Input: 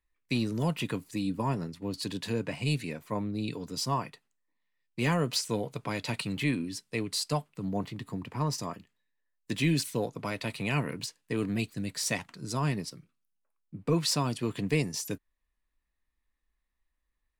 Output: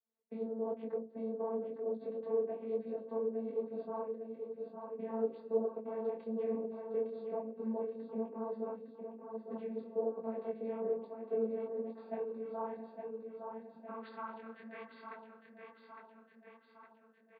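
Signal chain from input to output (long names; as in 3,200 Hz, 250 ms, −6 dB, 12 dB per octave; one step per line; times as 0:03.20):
gain on one half-wave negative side −7 dB
parametric band 3,400 Hz −10.5 dB 2.6 octaves
mains-hum notches 60/120/180/240/300/360/420/480/540 Hz
dynamic equaliser 240 Hz, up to −8 dB, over −46 dBFS, Q 0.77
brickwall limiter −29 dBFS, peak gain reduction 7 dB
channel vocoder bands 16, saw 224 Hz
linear-phase brick-wall low-pass 4,700 Hz
band-pass filter sweep 500 Hz → 2,100 Hz, 0:11.56–0:15.31
repeating echo 859 ms, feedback 57%, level −6 dB
micro pitch shift up and down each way 37 cents
level +16.5 dB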